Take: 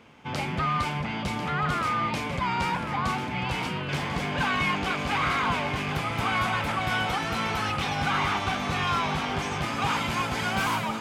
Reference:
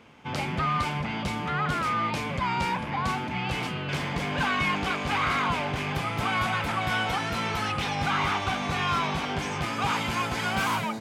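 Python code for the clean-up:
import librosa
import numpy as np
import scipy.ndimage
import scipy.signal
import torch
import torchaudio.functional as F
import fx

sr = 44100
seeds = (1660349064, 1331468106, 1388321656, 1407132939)

y = fx.fix_echo_inverse(x, sr, delay_ms=1045, level_db=-10.0)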